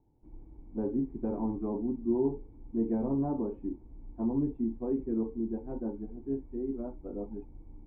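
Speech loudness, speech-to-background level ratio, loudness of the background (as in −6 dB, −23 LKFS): −34.0 LKFS, 19.5 dB, −53.5 LKFS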